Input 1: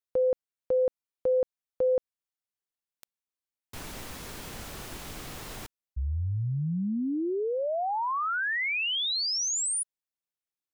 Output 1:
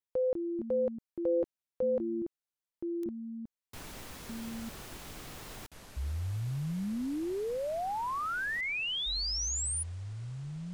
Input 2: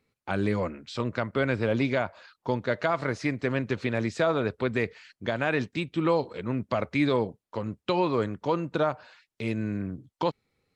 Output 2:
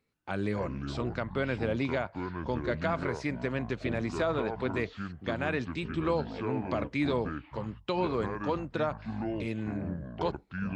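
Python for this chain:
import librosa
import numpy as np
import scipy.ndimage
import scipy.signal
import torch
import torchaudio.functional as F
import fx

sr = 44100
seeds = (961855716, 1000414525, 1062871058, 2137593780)

y = fx.echo_pitch(x, sr, ms=123, semitones=-7, count=2, db_per_echo=-6.0)
y = F.gain(torch.from_numpy(y), -5.0).numpy()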